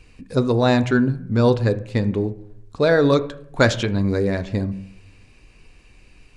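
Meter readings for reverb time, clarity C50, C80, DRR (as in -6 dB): 0.70 s, 16.0 dB, 19.0 dB, 11.0 dB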